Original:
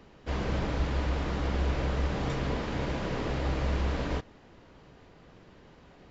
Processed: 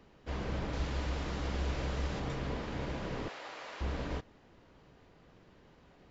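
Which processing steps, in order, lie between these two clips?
0.73–2.20 s: treble shelf 3.8 kHz +8 dB; 3.28–3.81 s: high-pass 760 Hz 12 dB/octave; trim -6 dB

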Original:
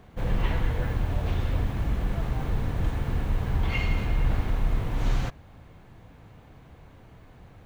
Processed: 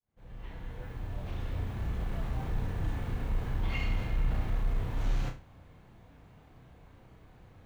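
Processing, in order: fade-in on the opening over 2.14 s; saturation -16 dBFS, distortion -22 dB; flutter echo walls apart 5.5 m, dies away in 0.3 s; trim -6.5 dB

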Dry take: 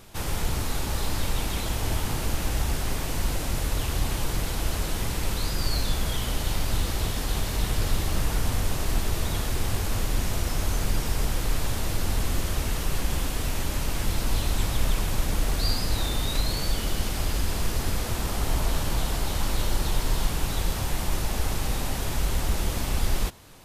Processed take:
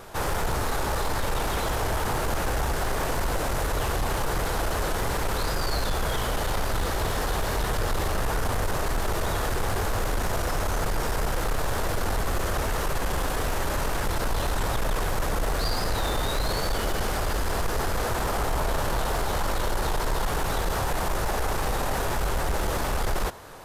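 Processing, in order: high-order bell 830 Hz +9 dB 2.5 oct; in parallel at 0 dB: peak limiter -18 dBFS, peak gain reduction 8 dB; on the sum: saturation -15.5 dBFS, distortion -15 dB; trim -4 dB

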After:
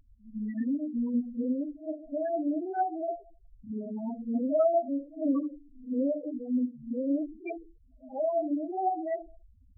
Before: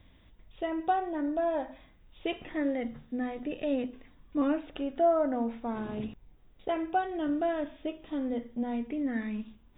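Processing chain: reverse the whole clip; two-slope reverb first 0.47 s, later 1.6 s, from -28 dB, DRR 2.5 dB; loudest bins only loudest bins 4

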